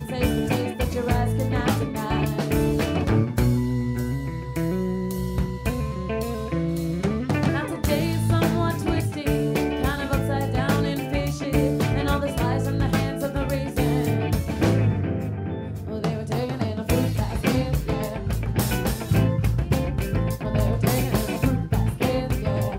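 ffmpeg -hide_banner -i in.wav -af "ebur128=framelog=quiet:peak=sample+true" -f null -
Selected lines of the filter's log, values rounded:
Integrated loudness:
  I:         -24.3 LUFS
  Threshold: -34.3 LUFS
Loudness range:
  LRA:         2.4 LU
  Threshold: -44.3 LUFS
  LRA low:   -25.9 LUFS
  LRA high:  -23.5 LUFS
Sample peak:
  Peak:       -7.7 dBFS
True peak:
  Peak:       -7.7 dBFS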